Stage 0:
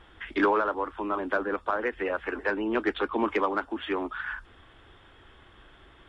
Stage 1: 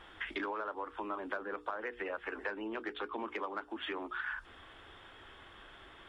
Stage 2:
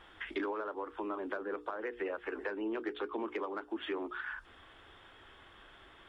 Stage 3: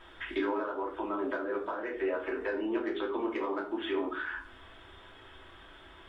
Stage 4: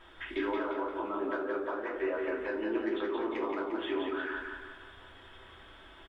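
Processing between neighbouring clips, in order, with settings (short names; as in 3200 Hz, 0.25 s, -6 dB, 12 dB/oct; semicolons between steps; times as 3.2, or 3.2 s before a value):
compressor 6:1, threshold -37 dBFS, peak gain reduction 16.5 dB; low shelf 260 Hz -8 dB; notches 60/120/180/240/300/360/420/480 Hz; gain +2 dB
dynamic EQ 370 Hz, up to +8 dB, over -55 dBFS, Q 1.3; gain -2.5 dB
reverb RT60 0.55 s, pre-delay 3 ms, DRR -1.5 dB
feedback echo 0.175 s, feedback 48%, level -4.5 dB; gain -2 dB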